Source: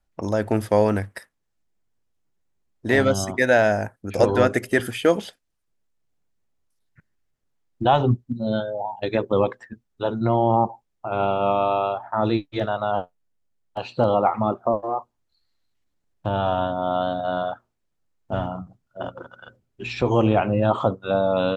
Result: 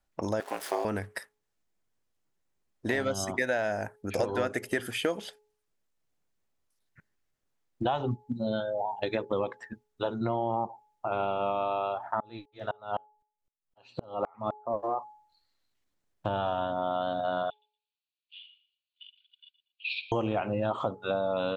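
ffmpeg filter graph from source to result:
ffmpeg -i in.wav -filter_complex "[0:a]asettb=1/sr,asplit=3[link_01][link_02][link_03];[link_01]atrim=end=0.404[link_04];[link_02]atrim=start=0.4:end=0.85,asetpts=PTS-STARTPTS,afade=type=in:duration=0.004:curve=qsin,afade=type=out:start_time=0.446:duration=0.004:curve=qsin,aeval=exprs='val(0)+0.5*0.0251*sgn(val(0))':channel_layout=same,highpass=frequency=520:width=0.5412,highpass=frequency=520:width=1.3066,aeval=exprs='val(0)*sin(2*PI*140*n/s)':channel_layout=same[link_05];[link_03]atrim=start=0.846[link_06];[link_04][link_05]acrossfade=duration=0.004:curve1=hsin:curve2=qsin[link_07];[link_07][link_06]acrossfade=duration=0.004:curve1=qsin:curve2=hsin,asettb=1/sr,asplit=3[link_08][link_09][link_10];[link_08]atrim=end=12.204[link_11];[link_09]atrim=start=12.2:end=14.76,asetpts=PTS-STARTPTS,afade=type=in:duration=0.004:curve=qsin,afade=type=out:start_time=2.556:duration=0.004:curve=qsin,aecho=1:1:7.4:0.3,atrim=end_sample=112896,aeval=exprs='val(0)*pow(10,-40*if(lt(mod(-3.9*n/s,1),2*abs(-3.9)/1000),1-mod(-3.9*n/s,1)/(2*abs(-3.9)/1000),(mod(-3.9*n/s,1)-2*abs(-3.9)/1000)/(1-2*abs(-3.9)/1000))/20)':channel_layout=same[link_12];[link_10]atrim=start=14.756[link_13];[link_11][link_12]acrossfade=duration=0.004:curve1=hsin:curve2=qsin[link_14];[link_14][link_13]acrossfade=duration=0.004:curve1=qsin:curve2=hsin,asettb=1/sr,asplit=3[link_15][link_16][link_17];[link_15]atrim=end=17.504[link_18];[link_16]atrim=start=17.5:end=20.12,asetpts=PTS-STARTPTS,afade=type=in:duration=0.004:curve=qsin,afade=type=out:start_time=2.616:duration=0.004:curve=qsin,asuperpass=centerf=3300:order=12:qfactor=1.5,asplit=2[link_19][link_20];[link_20]adelay=117,lowpass=frequency=3400:poles=1,volume=-13.5dB,asplit=2[link_21][link_22];[link_22]adelay=117,lowpass=frequency=3400:poles=1,volume=0.32,asplit=2[link_23][link_24];[link_24]adelay=117,lowpass=frequency=3400:poles=1,volume=0.32[link_25];[link_19][link_21][link_23][link_25]amix=inputs=4:normalize=0,atrim=end_sample=115542[link_26];[link_17]atrim=start=20.116[link_27];[link_18][link_26]acrossfade=duration=0.004:curve1=hsin:curve2=qsin[link_28];[link_28][link_27]acrossfade=duration=0.004:curve1=qsin:curve2=hsin,lowshelf=frequency=260:gain=-6.5,bandreject=frequency=423.2:width_type=h:width=4,bandreject=frequency=846.4:width_type=h:width=4,acompressor=threshold=-27dB:ratio=4" out.wav

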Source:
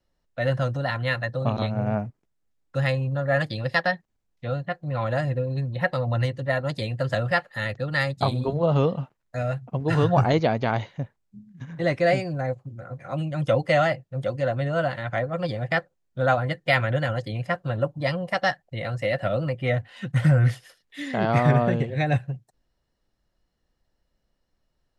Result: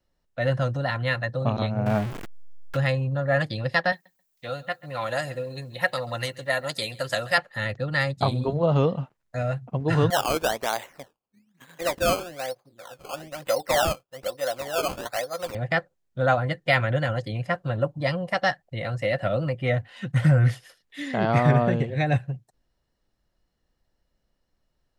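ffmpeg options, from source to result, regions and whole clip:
ffmpeg -i in.wav -filter_complex "[0:a]asettb=1/sr,asplit=3[link_01][link_02][link_03];[link_01]atrim=end=1.864[link_04];[link_02]atrim=start=1.86:end=2.77,asetpts=PTS-STARTPTS,afade=type=in:duration=0.004:curve=qsin,afade=type=out:start_time=0.906:duration=0.004:curve=qsin,aeval=exprs='val(0)+0.5*0.0355*sgn(val(0))':channel_layout=same,acrossover=split=2800[link_05][link_06];[link_06]acompressor=threshold=-56dB:ratio=4:attack=1:release=60[link_07];[link_05][link_07]amix=inputs=2:normalize=0,highshelf=frequency=2100:gain=10[link_08];[link_03]atrim=start=2.766[link_09];[link_04][link_08]acrossfade=duration=0.004:curve1=hsin:curve2=qsin[link_10];[link_10][link_09]acrossfade=duration=0.004:curve1=qsin:curve2=hsin,asettb=1/sr,asplit=3[link_11][link_12][link_13];[link_11]atrim=end=3.924[link_14];[link_12]atrim=start=3.92:end=7.38,asetpts=PTS-STARTPTS,afade=type=in:duration=0.004:curve=qsin,afade=type=out:start_time=3.456:duration=0.004:curve=qsin,aemphasis=mode=production:type=riaa,aecho=1:1:135|270:0.0891|0.0143,atrim=end_sample=152586[link_15];[link_13]atrim=start=7.376[link_16];[link_14][link_15]acrossfade=duration=0.004:curve1=hsin:curve2=qsin[link_17];[link_17][link_16]acrossfade=duration=0.004:curve1=qsin:curve2=hsin,asettb=1/sr,asplit=3[link_18][link_19][link_20];[link_18]atrim=end=10.104[link_21];[link_19]atrim=start=10.1:end=15.55,asetpts=PTS-STARTPTS,afade=type=in:duration=0.004:curve=qsin,afade=type=out:start_time=5.446:duration=0.004:curve=qsin,highpass=510,acrusher=samples=16:mix=1:aa=0.000001:lfo=1:lforange=16:lforate=1.1[link_22];[link_20]atrim=start=15.546[link_23];[link_21][link_22]acrossfade=duration=0.004:curve1=hsin:curve2=qsin[link_24];[link_24][link_23]acrossfade=duration=0.004:curve1=qsin:curve2=hsin" out.wav

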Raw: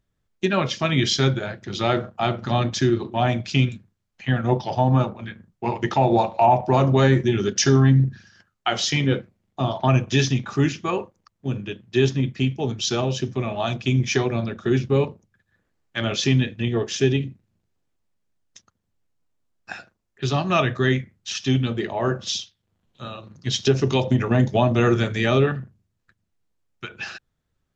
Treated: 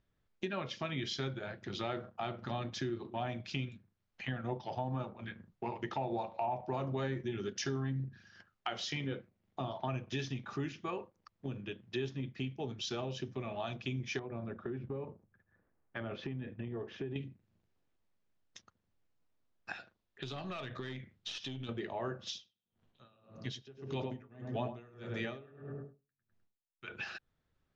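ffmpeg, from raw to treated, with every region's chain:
ffmpeg -i in.wav -filter_complex "[0:a]asettb=1/sr,asplit=3[link_01][link_02][link_03];[link_01]atrim=end=14.194[link_04];[link_02]atrim=start=14.19:end=17.16,asetpts=PTS-STARTPTS,afade=type=in:duration=0.004:curve=qsin,afade=type=out:start_time=2.966:duration=0.004:curve=qsin,lowpass=1500,acompressor=threshold=-25dB:ratio=3:attack=3.2:release=140:knee=1:detection=peak[link_05];[link_03]atrim=start=17.156[link_06];[link_04][link_05]acrossfade=duration=0.004:curve1=hsin:curve2=qsin[link_07];[link_07][link_06]acrossfade=duration=0.004:curve1=qsin:curve2=hsin,asettb=1/sr,asplit=3[link_08][link_09][link_10];[link_08]atrim=end=19.744[link_11];[link_09]atrim=start=19.74:end=21.69,asetpts=PTS-STARTPTS,afade=type=in:duration=0.004:curve=qsin,afade=type=out:start_time=1.946:duration=0.004:curve=qsin,equalizer=frequency=3600:width=2.2:gain=6.5,aeval=exprs='(tanh(5.62*val(0)+0.45)-tanh(0.45))/5.62':channel_layout=same,acompressor=threshold=-29dB:ratio=4:attack=3.2:release=140:knee=1:detection=peak[link_12];[link_10]atrim=start=21.686[link_13];[link_11][link_12]acrossfade=duration=0.004:curve1=hsin:curve2=qsin[link_14];[link_14][link_13]acrossfade=duration=0.004:curve1=qsin:curve2=hsin,asettb=1/sr,asplit=3[link_15][link_16][link_17];[link_15]atrim=end=22.274[link_18];[link_16]atrim=start=22.27:end=26.88,asetpts=PTS-STARTPTS,afade=type=in:duration=0.004:curve=qsin,afade=type=out:start_time=4.606:duration=0.004:curve=qsin,asplit=2[link_19][link_20];[link_20]adelay=102,lowpass=frequency=1100:poles=1,volume=-3dB,asplit=2[link_21][link_22];[link_22]adelay=102,lowpass=frequency=1100:poles=1,volume=0.45,asplit=2[link_23][link_24];[link_24]adelay=102,lowpass=frequency=1100:poles=1,volume=0.45,asplit=2[link_25][link_26];[link_26]adelay=102,lowpass=frequency=1100:poles=1,volume=0.45,asplit=2[link_27][link_28];[link_28]adelay=102,lowpass=frequency=1100:poles=1,volume=0.45,asplit=2[link_29][link_30];[link_30]adelay=102,lowpass=frequency=1100:poles=1,volume=0.45[link_31];[link_19][link_21][link_23][link_25][link_27][link_29][link_31]amix=inputs=7:normalize=0,atrim=end_sample=203301,aeval=exprs='val(0)*pow(10,-33*(0.5-0.5*cos(2*PI*1.7*n/s))/20)':channel_layout=same[link_32];[link_17]atrim=start=26.876[link_33];[link_18][link_32]acrossfade=duration=0.004:curve1=hsin:curve2=qsin[link_34];[link_34][link_33]acrossfade=duration=0.004:curve1=qsin:curve2=hsin,lowpass=5200,bass=frequency=250:gain=-3,treble=frequency=4000:gain=-2,acompressor=threshold=-40dB:ratio=2.5,volume=-2dB" out.wav

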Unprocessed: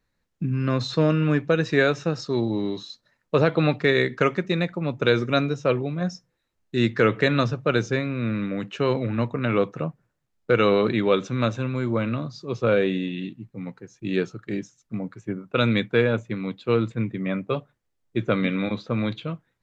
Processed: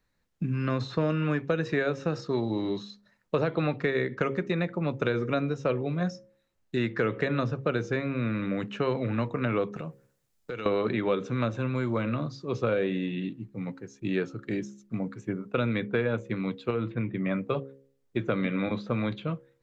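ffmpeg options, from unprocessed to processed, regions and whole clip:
ffmpeg -i in.wav -filter_complex "[0:a]asettb=1/sr,asplit=3[link_01][link_02][link_03];[link_01]atrim=end=9.764[link_04];[link_02]atrim=start=9.76:end=10.66,asetpts=PTS-STARTPTS,afade=type=in:duration=0.004:curve=qsin,afade=type=out:start_time=0.896:duration=0.004:curve=qsin,highshelf=frequency=4200:gain=12,acompressor=threshold=-33dB:ratio=5:attack=3.2:release=140:knee=1:detection=peak[link_05];[link_03]atrim=start=10.656[link_06];[link_04][link_05]acrossfade=duration=0.004:curve1=hsin:curve2=qsin[link_07];[link_07][link_06]acrossfade=duration=0.004:curve1=qsin:curve2=hsin,asettb=1/sr,asplit=3[link_08][link_09][link_10];[link_08]atrim=end=16.704[link_11];[link_09]atrim=start=16.7:end=17.31,asetpts=PTS-STARTPTS,afade=type=in:duration=0.004:curve=qsin,afade=type=out:start_time=0.606:duration=0.004:curve=qsin,lowpass=frequency=3400:width=0.5412,lowpass=frequency=3400:width=1.3066,acompressor=threshold=-21dB:ratio=4:attack=3.2:release=140:knee=1:detection=peak[link_12];[link_10]atrim=start=17.306[link_13];[link_11][link_12]acrossfade=duration=0.004:curve1=hsin:curve2=qsin[link_14];[link_14][link_13]acrossfade=duration=0.004:curve1=qsin:curve2=hsin,bandreject=frequency=67.88:width_type=h:width=4,bandreject=frequency=135.76:width_type=h:width=4,bandreject=frequency=203.64:width_type=h:width=4,bandreject=frequency=271.52:width_type=h:width=4,bandreject=frequency=339.4:width_type=h:width=4,bandreject=frequency=407.28:width_type=h:width=4,bandreject=frequency=475.16:width_type=h:width=4,bandreject=frequency=543.04:width_type=h:width=4,acrossover=split=610|2400[link_15][link_16][link_17];[link_15]acompressor=threshold=-26dB:ratio=4[link_18];[link_16]acompressor=threshold=-32dB:ratio=4[link_19];[link_17]acompressor=threshold=-48dB:ratio=4[link_20];[link_18][link_19][link_20]amix=inputs=3:normalize=0" out.wav

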